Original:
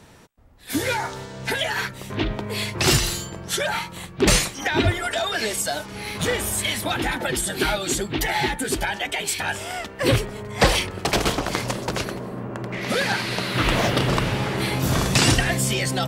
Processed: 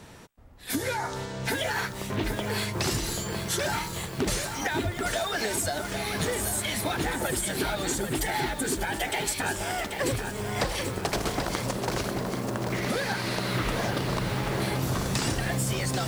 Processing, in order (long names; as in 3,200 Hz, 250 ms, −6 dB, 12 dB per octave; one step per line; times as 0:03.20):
dynamic equaliser 2,800 Hz, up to −5 dB, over −39 dBFS, Q 1.3
downward compressor 6 to 1, threshold −27 dBFS, peak gain reduction 14.5 dB
feedback echo at a low word length 786 ms, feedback 55%, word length 7 bits, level −5.5 dB
level +1 dB